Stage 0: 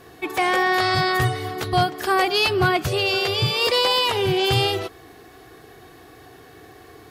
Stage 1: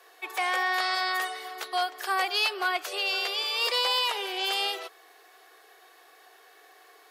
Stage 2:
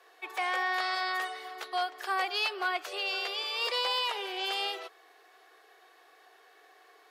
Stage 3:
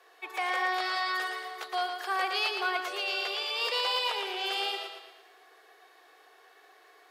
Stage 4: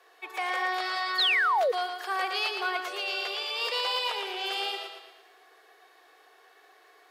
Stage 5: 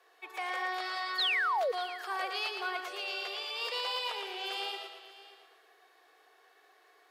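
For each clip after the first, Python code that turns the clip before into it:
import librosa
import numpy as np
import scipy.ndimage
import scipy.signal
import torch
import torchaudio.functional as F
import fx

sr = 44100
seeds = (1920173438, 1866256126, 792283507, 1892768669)

y1 = scipy.signal.sosfilt(scipy.signal.bessel(8, 720.0, 'highpass', norm='mag', fs=sr, output='sos'), x)
y1 = y1 * librosa.db_to_amplitude(-5.0)
y2 = fx.high_shelf(y1, sr, hz=7000.0, db=-10.0)
y2 = y2 * librosa.db_to_amplitude(-3.0)
y3 = fx.echo_feedback(y2, sr, ms=114, feedback_pct=46, wet_db=-6.0)
y4 = fx.spec_paint(y3, sr, seeds[0], shape='fall', start_s=1.18, length_s=0.54, low_hz=450.0, high_hz=4500.0, level_db=-24.0)
y5 = y4 + 10.0 ** (-17.5 / 20.0) * np.pad(y4, (int(588 * sr / 1000.0), 0))[:len(y4)]
y5 = y5 * librosa.db_to_amplitude(-5.5)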